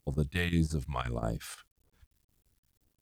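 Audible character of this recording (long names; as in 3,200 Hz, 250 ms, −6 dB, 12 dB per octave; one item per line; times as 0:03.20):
chopped level 5.7 Hz, depth 65%, duty 80%
phaser sweep stages 2, 1.8 Hz, lowest notch 280–2,600 Hz
a quantiser's noise floor 12 bits, dither none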